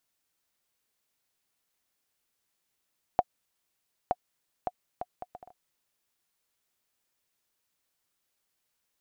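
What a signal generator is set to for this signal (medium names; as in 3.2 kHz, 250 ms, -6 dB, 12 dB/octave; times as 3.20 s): bouncing ball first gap 0.92 s, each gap 0.61, 725 Hz, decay 42 ms -10 dBFS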